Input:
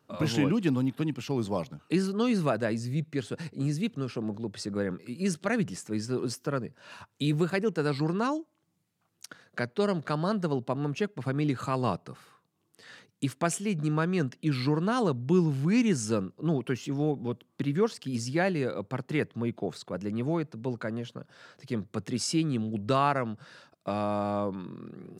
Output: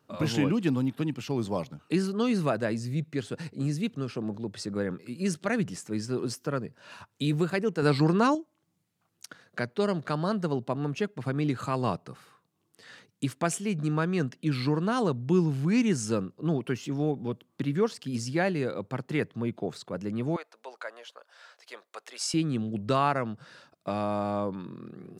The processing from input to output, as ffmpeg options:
-filter_complex "[0:a]asettb=1/sr,asplit=3[s0][s1][s2];[s0]atrim=end=7.824[s3];[s1]atrim=start=7.82:end=8.35,asetpts=PTS-STARTPTS,afade=t=in:d=0.004:c=qsin,afade=t=out:st=0.526:d=0.004:c=qsin,acontrast=36[s4];[s2]atrim=start=8.346[s5];[s3][s4]acrossfade=d=0.004:c1=hsin:c2=qsin[s6];[s6][s5]acrossfade=d=0.004:c1=qsin:c2=hsin,asettb=1/sr,asplit=3[s7][s8][s9];[s7]atrim=end=20.364[s10];[s8]atrim=start=20.36:end=22.34,asetpts=PTS-STARTPTS,afade=t=in:d=0.004:c=qsin,afade=t=out:st=1.976:d=0.004:c=qsin,highpass=f=600:w=0.5412,highpass=f=600:w=1.3066[s11];[s9]atrim=start=22.336[s12];[s10][s11]acrossfade=d=0.004:c1=hsin:c2=qsin[s13];[s13][s12]acrossfade=d=0.004:c1=qsin:c2=hsin"

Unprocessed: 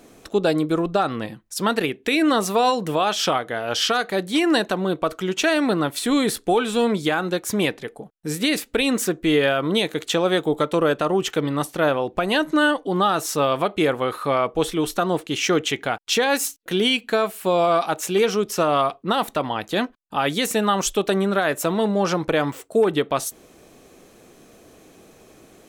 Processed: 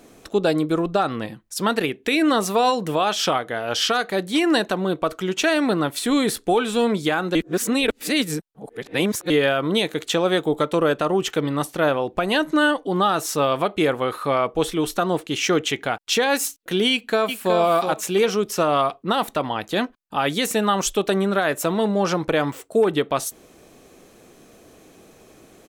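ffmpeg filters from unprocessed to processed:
-filter_complex "[0:a]asplit=2[s0][s1];[s1]afade=t=in:st=16.91:d=0.01,afade=t=out:st=17.56:d=0.01,aecho=0:1:370|740|1110:0.446684|0.0670025|0.0100504[s2];[s0][s2]amix=inputs=2:normalize=0,asplit=3[s3][s4][s5];[s3]atrim=end=7.352[s6];[s4]atrim=start=7.348:end=9.302,asetpts=PTS-STARTPTS,areverse[s7];[s5]atrim=start=9.298[s8];[s6][s7]acrossfade=d=0.004:c1=hsin:c2=hsin[s9];[s9][s8]acrossfade=d=0.004:c1=hsin:c2=hsin"

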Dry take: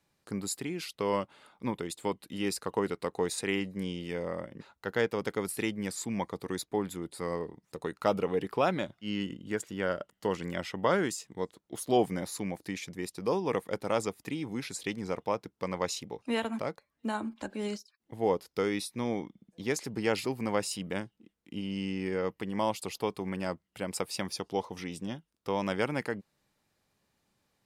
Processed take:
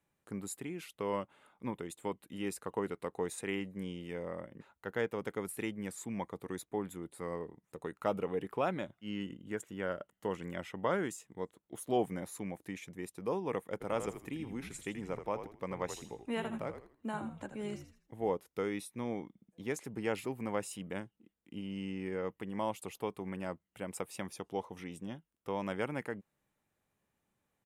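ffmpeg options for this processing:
-filter_complex "[0:a]asplit=3[s0][s1][s2];[s0]afade=t=out:st=13.8:d=0.02[s3];[s1]asplit=5[s4][s5][s6][s7][s8];[s5]adelay=81,afreqshift=-61,volume=0.335[s9];[s6]adelay=162,afreqshift=-122,volume=0.111[s10];[s7]adelay=243,afreqshift=-183,volume=0.0363[s11];[s8]adelay=324,afreqshift=-244,volume=0.012[s12];[s4][s9][s10][s11][s12]amix=inputs=5:normalize=0,afade=t=in:st=13.8:d=0.02,afade=t=out:st=18.29:d=0.02[s13];[s2]afade=t=in:st=18.29:d=0.02[s14];[s3][s13][s14]amix=inputs=3:normalize=0,equalizer=f=4700:t=o:w=0.64:g=-12.5,volume=0.531"

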